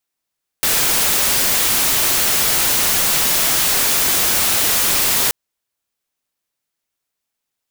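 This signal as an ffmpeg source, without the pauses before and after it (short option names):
-f lavfi -i "anoisesrc=c=white:a=0.274:d=4.68:r=44100:seed=1"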